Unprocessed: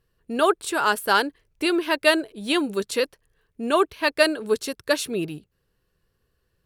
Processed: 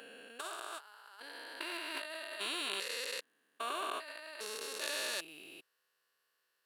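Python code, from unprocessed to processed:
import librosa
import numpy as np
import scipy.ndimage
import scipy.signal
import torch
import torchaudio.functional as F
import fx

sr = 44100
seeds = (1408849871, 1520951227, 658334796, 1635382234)

y = fx.spec_steps(x, sr, hold_ms=400)
y = scipy.signal.sosfilt(scipy.signal.butter(2, 930.0, 'highpass', fs=sr, output='sos'), y)
y = fx.over_compress(y, sr, threshold_db=-38.0, ratio=-0.5)
y = y * librosa.db_to_amplitude(-3.0)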